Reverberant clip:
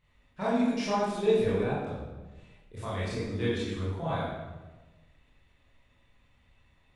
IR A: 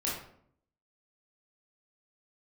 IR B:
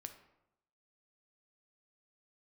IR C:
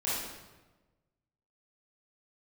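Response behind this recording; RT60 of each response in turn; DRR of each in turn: C; 0.65, 0.85, 1.2 seconds; −6.0, 6.5, −9.5 decibels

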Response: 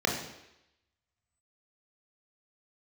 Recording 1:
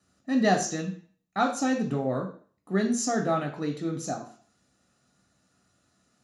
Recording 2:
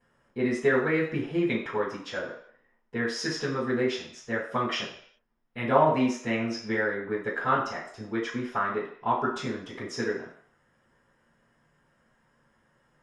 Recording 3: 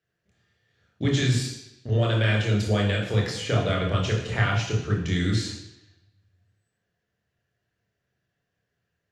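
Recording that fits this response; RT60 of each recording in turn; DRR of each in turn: 3; 0.45, 0.60, 0.85 seconds; 2.5, −14.0, −1.0 decibels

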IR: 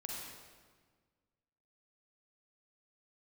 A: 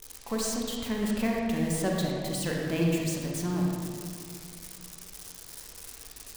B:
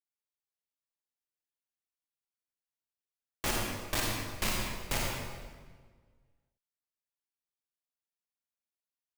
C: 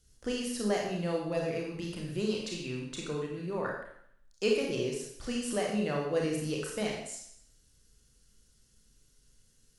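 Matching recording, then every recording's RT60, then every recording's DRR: B; 2.4, 1.6, 0.65 seconds; −2.0, −2.5, −1.5 decibels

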